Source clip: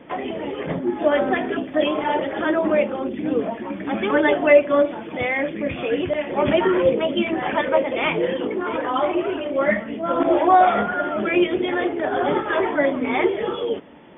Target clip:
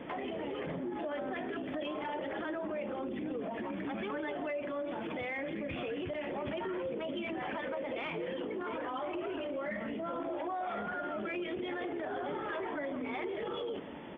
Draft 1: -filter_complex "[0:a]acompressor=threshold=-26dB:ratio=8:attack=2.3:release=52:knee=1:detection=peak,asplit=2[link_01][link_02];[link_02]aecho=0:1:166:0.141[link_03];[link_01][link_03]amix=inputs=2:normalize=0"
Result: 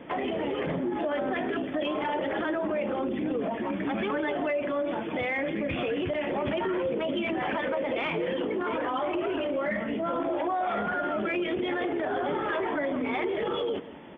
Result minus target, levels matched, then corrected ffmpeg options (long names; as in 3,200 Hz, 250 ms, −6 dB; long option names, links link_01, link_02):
downward compressor: peak gain reduction −8.5 dB
-filter_complex "[0:a]acompressor=threshold=-35.5dB:ratio=8:attack=2.3:release=52:knee=1:detection=peak,asplit=2[link_01][link_02];[link_02]aecho=0:1:166:0.141[link_03];[link_01][link_03]amix=inputs=2:normalize=0"